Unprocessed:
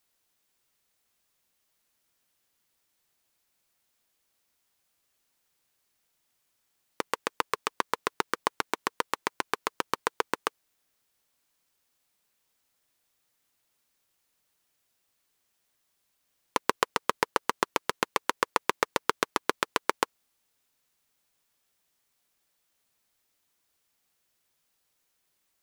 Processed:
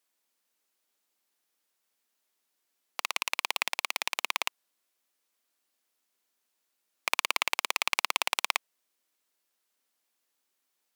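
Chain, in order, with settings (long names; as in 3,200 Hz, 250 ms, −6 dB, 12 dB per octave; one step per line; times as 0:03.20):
high-pass filter 92 Hz 24 dB per octave
wrong playback speed 33 rpm record played at 78 rpm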